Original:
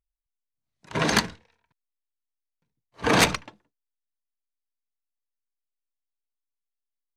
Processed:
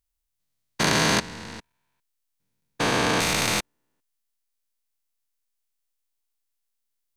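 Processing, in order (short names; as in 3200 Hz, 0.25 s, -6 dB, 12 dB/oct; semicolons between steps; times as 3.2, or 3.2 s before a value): stepped spectrum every 0.4 s; high shelf 3600 Hz +7.5 dB; gain +6.5 dB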